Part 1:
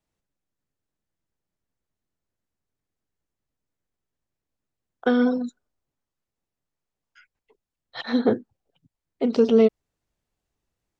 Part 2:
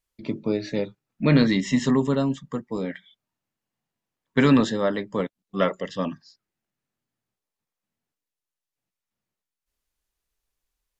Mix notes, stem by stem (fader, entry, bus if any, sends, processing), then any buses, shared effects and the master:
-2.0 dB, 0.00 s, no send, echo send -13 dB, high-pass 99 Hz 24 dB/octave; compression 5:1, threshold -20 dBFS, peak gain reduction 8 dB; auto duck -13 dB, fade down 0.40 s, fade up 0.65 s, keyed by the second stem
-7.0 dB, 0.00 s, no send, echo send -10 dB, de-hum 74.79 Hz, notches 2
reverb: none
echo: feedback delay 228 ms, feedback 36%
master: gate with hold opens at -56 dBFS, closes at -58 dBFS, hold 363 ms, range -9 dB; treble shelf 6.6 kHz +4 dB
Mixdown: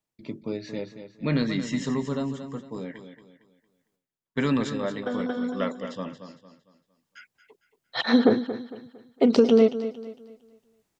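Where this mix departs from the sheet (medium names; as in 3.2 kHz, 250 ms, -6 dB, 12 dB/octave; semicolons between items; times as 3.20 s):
stem 1 -2.0 dB -> +6.0 dB; stem 2: missing de-hum 74.79 Hz, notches 2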